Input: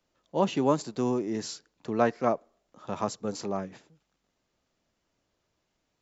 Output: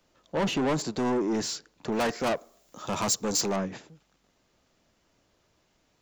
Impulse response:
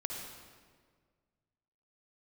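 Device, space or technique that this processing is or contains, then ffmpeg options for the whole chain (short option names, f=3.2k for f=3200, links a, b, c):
saturation between pre-emphasis and de-emphasis: -filter_complex "[0:a]highshelf=f=5.9k:g=10,asoftclip=type=tanh:threshold=-31.5dB,highshelf=f=5.9k:g=-10,asettb=1/sr,asplit=3[a][b][c];[a]atrim=end=1.924[d];[b]atrim=start=1.92:end=3.56,asetpts=PTS-STARTPTS,afade=t=in:d=0.004:c=qsin,afade=t=out:st=1.636:d=0.004:c=qsin,aemphasis=mode=production:type=75fm[e];[c]atrim=start=3.556[f];[d][e]acrossfade=d=0.004:c1=hsin:c2=qsin[g];[g][f]acrossfade=d=0.004:c1=qsin:c2=hsin,volume=8.5dB"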